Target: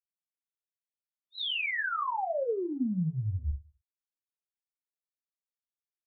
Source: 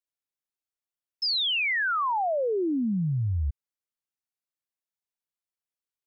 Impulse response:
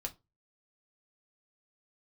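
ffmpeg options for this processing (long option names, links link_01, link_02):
-filter_complex "[0:a]agate=range=-33dB:threshold=-18dB:ratio=3:detection=peak[link_01];[1:a]atrim=start_sample=2205[link_02];[link_01][link_02]afir=irnorm=-1:irlink=0,aresample=8000,aresample=44100,volume=7.5dB"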